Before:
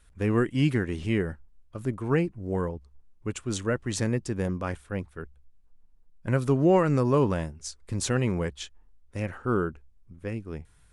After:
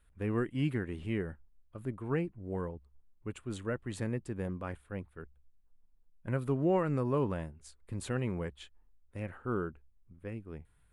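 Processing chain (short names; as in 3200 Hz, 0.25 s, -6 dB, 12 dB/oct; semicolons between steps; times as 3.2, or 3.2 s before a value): bell 5800 Hz -14 dB 0.75 oct; gain -8 dB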